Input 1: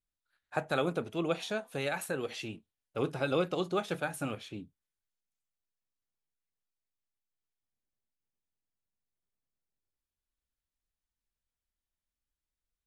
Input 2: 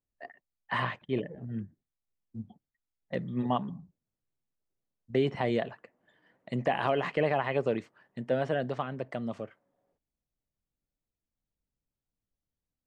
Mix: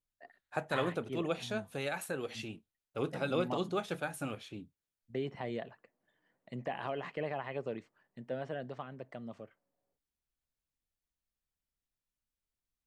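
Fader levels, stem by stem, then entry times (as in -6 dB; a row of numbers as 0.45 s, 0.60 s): -3.0 dB, -10.0 dB; 0.00 s, 0.00 s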